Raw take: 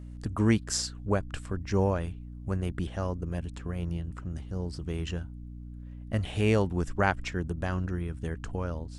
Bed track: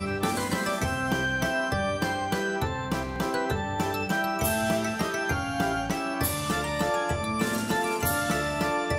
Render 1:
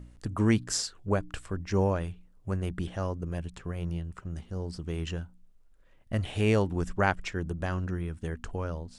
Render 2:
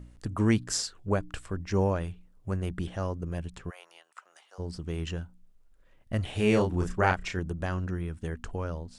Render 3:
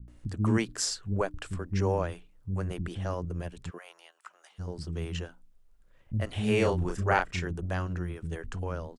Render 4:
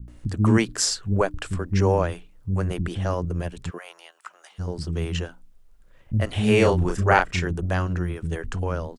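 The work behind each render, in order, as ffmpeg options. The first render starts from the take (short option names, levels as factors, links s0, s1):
-af "bandreject=f=60:t=h:w=4,bandreject=f=120:t=h:w=4,bandreject=f=180:t=h:w=4,bandreject=f=240:t=h:w=4,bandreject=f=300:t=h:w=4"
-filter_complex "[0:a]asplit=3[s0][s1][s2];[s0]afade=t=out:st=3.69:d=0.02[s3];[s1]highpass=f=710:w=0.5412,highpass=f=710:w=1.3066,afade=t=in:st=3.69:d=0.02,afade=t=out:st=4.58:d=0.02[s4];[s2]afade=t=in:st=4.58:d=0.02[s5];[s3][s4][s5]amix=inputs=3:normalize=0,asettb=1/sr,asplit=3[s6][s7][s8];[s6]atrim=end=6.364[s9];[s7]atrim=start=6.36:end=7.39,asetpts=PTS-STARTPTS,afade=t=in:d=0.004:c=qsin,afade=t=out:st=1.026:d=0.004:c=qsin,asplit=2[s10][s11];[s11]adelay=33,volume=0.631[s12];[s10][s12]amix=inputs=2:normalize=0,atrim=end_sample=45423[s13];[s8]atrim=start=7.386[s14];[s9][s13]acrossfade=d=0.004:c1=hsin:c2=qsin[s15];[s15][s14]acrossfade=d=0.004:c1=qsin:c2=hsin"
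-filter_complex "[0:a]acrossover=split=260[s0][s1];[s1]adelay=80[s2];[s0][s2]amix=inputs=2:normalize=0"
-af "volume=2.37"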